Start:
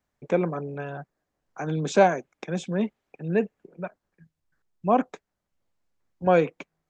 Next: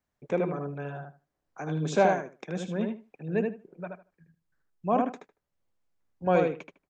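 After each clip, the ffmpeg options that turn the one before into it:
-filter_complex "[0:a]asplit=2[s0][s1];[s1]adelay=77,lowpass=f=3100:p=1,volume=0.668,asplit=2[s2][s3];[s3]adelay=77,lowpass=f=3100:p=1,volume=0.18,asplit=2[s4][s5];[s5]adelay=77,lowpass=f=3100:p=1,volume=0.18[s6];[s0][s2][s4][s6]amix=inputs=4:normalize=0,volume=0.562"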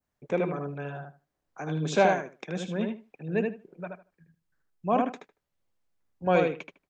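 -af "adynamicequalizer=threshold=0.00447:dfrequency=3100:dqfactor=0.83:tfrequency=3100:tqfactor=0.83:attack=5:release=100:ratio=0.375:range=3:mode=boostabove:tftype=bell"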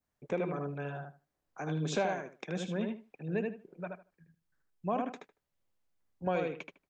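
-af "acompressor=threshold=0.0447:ratio=3,volume=0.75"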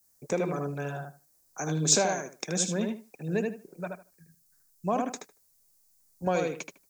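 -af "aexciter=amount=4.5:drive=9.4:freq=4600,volume=1.68"

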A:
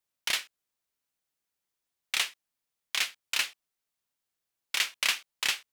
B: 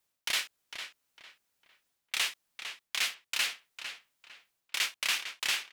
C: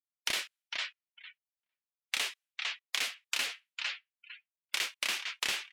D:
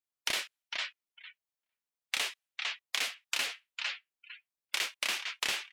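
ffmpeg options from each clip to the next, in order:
-filter_complex "[0:a]areverse,acompressor=threshold=0.0158:ratio=4,areverse,asplit=2[s0][s1];[s1]adelay=453,lowpass=f=4000:p=1,volume=0.376,asplit=2[s2][s3];[s3]adelay=453,lowpass=f=4000:p=1,volume=0.3,asplit=2[s4][s5];[s5]adelay=453,lowpass=f=4000:p=1,volume=0.3,asplit=2[s6][s7];[s7]adelay=453,lowpass=f=4000:p=1,volume=0.3[s8];[s0][s2][s4][s6][s8]amix=inputs=5:normalize=0,volume=2.24"
-filter_complex "[0:a]afftdn=nr=35:nf=-50,acrossover=split=540[s0][s1];[s1]acompressor=threshold=0.0141:ratio=6[s2];[s0][s2]amix=inputs=2:normalize=0,volume=2.24"
-af "equalizer=f=690:t=o:w=1.4:g=2.5"

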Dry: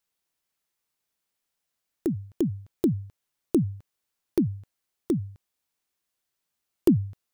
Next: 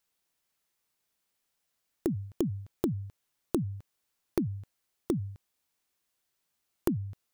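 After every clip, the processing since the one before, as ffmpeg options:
-af "acompressor=threshold=0.0398:ratio=10,volume=1.26"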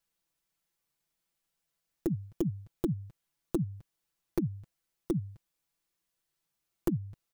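-af "lowshelf=f=160:g=8,aecho=1:1:6:0.68,volume=0.531"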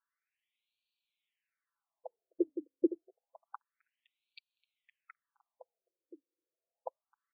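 -filter_complex "[0:a]tremolo=f=110:d=0.4,asplit=2[s0][s1];[s1]adelay=513,lowpass=f=2000:p=1,volume=0.299,asplit=2[s2][s3];[s3]adelay=513,lowpass=f=2000:p=1,volume=0.18[s4];[s0][s2][s4]amix=inputs=3:normalize=0,afftfilt=real='re*between(b*sr/1024,400*pow(3300/400,0.5+0.5*sin(2*PI*0.28*pts/sr))/1.41,400*pow(3300/400,0.5+0.5*sin(2*PI*0.28*pts/sr))*1.41)':imag='im*between(b*sr/1024,400*pow(3300/400,0.5+0.5*sin(2*PI*0.28*pts/sr))/1.41,400*pow(3300/400,0.5+0.5*sin(2*PI*0.28*pts/sr))*1.41)':win_size=1024:overlap=0.75,volume=1.88"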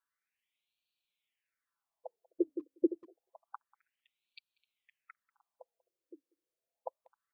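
-filter_complex "[0:a]asplit=2[s0][s1];[s1]adelay=190,highpass=300,lowpass=3400,asoftclip=type=hard:threshold=0.0501,volume=0.0631[s2];[s0][s2]amix=inputs=2:normalize=0"

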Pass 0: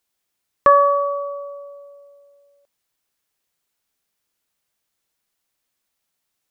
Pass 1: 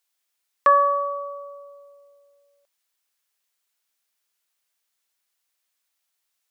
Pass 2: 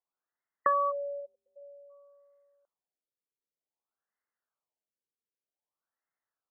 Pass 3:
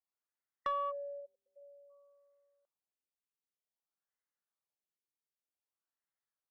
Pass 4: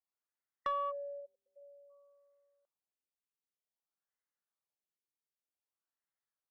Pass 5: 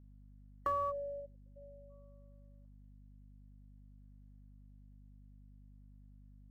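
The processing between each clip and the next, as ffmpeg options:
-af "highpass=f=1100:p=1"
-af "acompressor=threshold=0.1:ratio=2.5,afftfilt=real='re*lt(b*sr/1024,510*pow(2200/510,0.5+0.5*sin(2*PI*0.53*pts/sr)))':imag='im*lt(b*sr/1024,510*pow(2200/510,0.5+0.5*sin(2*PI*0.53*pts/sr)))':win_size=1024:overlap=0.75,volume=0.562"
-af "asoftclip=type=tanh:threshold=0.106,volume=0.447"
-af anull
-filter_complex "[0:a]acrossover=split=1900[s0][s1];[s1]acrusher=samples=36:mix=1:aa=0.000001[s2];[s0][s2]amix=inputs=2:normalize=0,aeval=exprs='val(0)+0.00126*(sin(2*PI*50*n/s)+sin(2*PI*2*50*n/s)/2+sin(2*PI*3*50*n/s)/3+sin(2*PI*4*50*n/s)/4+sin(2*PI*5*50*n/s)/5)':c=same,volume=1.19"

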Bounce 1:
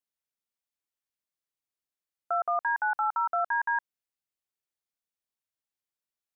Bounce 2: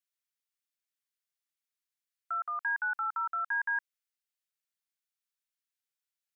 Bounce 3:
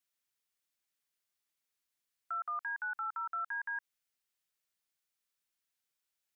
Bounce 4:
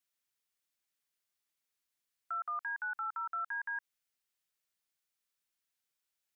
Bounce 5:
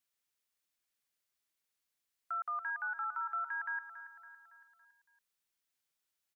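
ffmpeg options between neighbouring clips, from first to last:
-af "highpass=f=1300:w=0.5412,highpass=f=1300:w=1.3066"
-af "alimiter=level_in=3.98:limit=0.0631:level=0:latency=1:release=51,volume=0.251,volume=1.58"
-af anull
-af "aecho=1:1:280|560|840|1120|1400:0.237|0.123|0.0641|0.0333|0.0173"

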